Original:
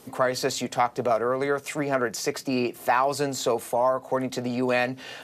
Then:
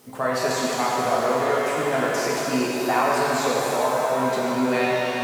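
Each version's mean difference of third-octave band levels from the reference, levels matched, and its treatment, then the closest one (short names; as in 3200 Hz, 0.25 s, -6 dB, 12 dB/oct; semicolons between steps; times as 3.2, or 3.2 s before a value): 9.5 dB: HPF 47 Hz; requantised 10-bit, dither triangular; shimmer reverb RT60 3.5 s, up +7 st, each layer -8 dB, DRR -5 dB; gain -3.5 dB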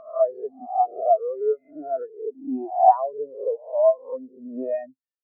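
21.0 dB: spectral swells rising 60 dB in 1.46 s; in parallel at -6 dB: soft clip -17.5 dBFS, distortion -13 dB; on the sum: LPF 3000 Hz 12 dB/oct; spectral expander 4:1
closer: first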